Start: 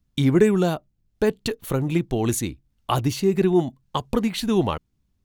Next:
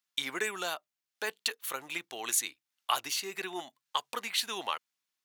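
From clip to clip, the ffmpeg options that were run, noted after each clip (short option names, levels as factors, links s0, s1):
-af "highpass=1300"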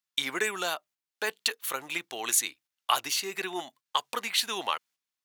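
-af "agate=range=0.398:threshold=0.00112:ratio=16:detection=peak,volume=1.58"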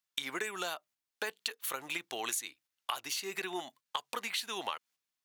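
-af "acompressor=threshold=0.0224:ratio=6"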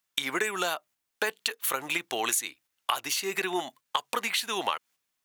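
-af "equalizer=f=4500:w=1.3:g=-3,volume=2.66"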